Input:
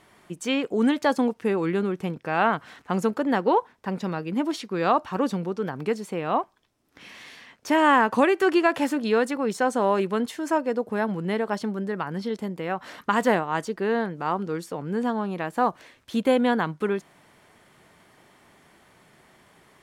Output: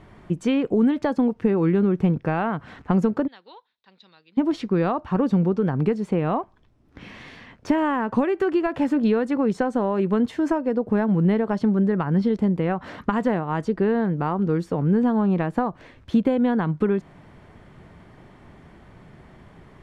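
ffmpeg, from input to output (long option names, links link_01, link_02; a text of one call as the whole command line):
ffmpeg -i in.wav -filter_complex "[0:a]asplit=3[link_01][link_02][link_03];[link_01]afade=type=out:start_time=3.26:duration=0.02[link_04];[link_02]bandpass=frequency=3900:width_type=q:width=6.8,afade=type=in:start_time=3.26:duration=0.02,afade=type=out:start_time=4.37:duration=0.02[link_05];[link_03]afade=type=in:start_time=4.37:duration=0.02[link_06];[link_04][link_05][link_06]amix=inputs=3:normalize=0,acompressor=threshold=-26dB:ratio=6,aemphasis=mode=reproduction:type=riaa,volume=4dB" out.wav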